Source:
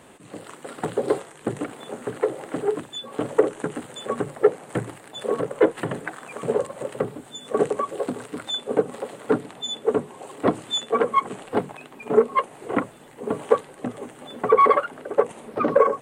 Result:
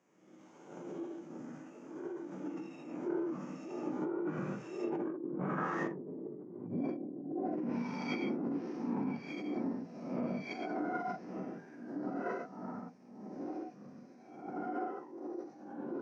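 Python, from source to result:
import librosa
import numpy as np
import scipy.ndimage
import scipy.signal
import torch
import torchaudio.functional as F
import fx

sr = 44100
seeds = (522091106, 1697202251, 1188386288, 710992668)

y = fx.spec_swells(x, sr, rise_s=0.87)
y = fx.doppler_pass(y, sr, speed_mps=27, closest_m=4.7, pass_at_s=6.4)
y = 10.0 ** (-18.5 / 20.0) * (np.abs((y / 10.0 ** (-18.5 / 20.0) + 3.0) % 4.0 - 2.0) - 1.0)
y = fx.rev_gated(y, sr, seeds[0], gate_ms=200, shape='flat', drr_db=-4.0)
y = fx.env_lowpass_down(y, sr, base_hz=550.0, full_db=-24.0)
y = fx.formant_shift(y, sr, semitones=-6)
y = fx.over_compress(y, sr, threshold_db=-37.0, ratio=-1.0)
y = scipy.signal.sosfilt(scipy.signal.butter(4, 150.0, 'highpass', fs=sr, output='sos'), y)
y = fx.air_absorb(y, sr, metres=51.0)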